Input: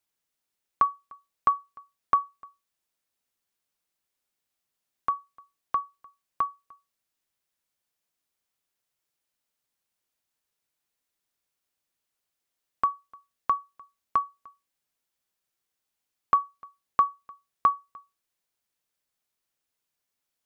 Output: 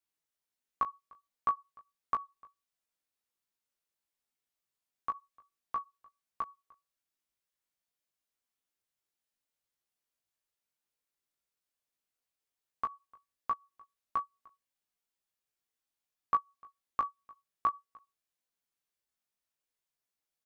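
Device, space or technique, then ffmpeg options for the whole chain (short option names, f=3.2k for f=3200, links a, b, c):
double-tracked vocal: -filter_complex "[0:a]asplit=2[a][b];[b]adelay=20,volume=-8dB[c];[a][c]amix=inputs=2:normalize=0,flanger=delay=15.5:depth=2.8:speed=1.4,volume=-4.5dB"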